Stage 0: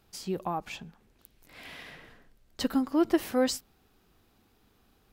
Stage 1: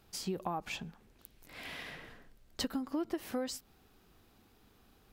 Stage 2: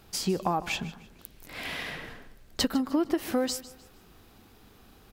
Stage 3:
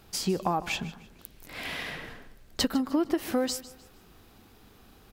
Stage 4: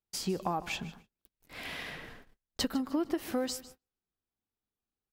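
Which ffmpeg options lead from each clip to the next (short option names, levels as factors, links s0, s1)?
-af "acompressor=threshold=0.0224:ratio=12,volume=1.12"
-af "aecho=1:1:152|304|456:0.141|0.0466|0.0154,volume=2.82"
-af anull
-af "agate=range=0.0178:threshold=0.00501:ratio=16:detection=peak,volume=0.562"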